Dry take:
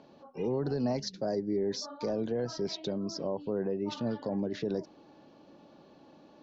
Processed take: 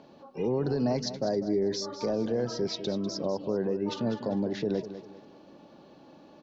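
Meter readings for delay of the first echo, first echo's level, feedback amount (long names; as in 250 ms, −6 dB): 198 ms, −12.0 dB, 36%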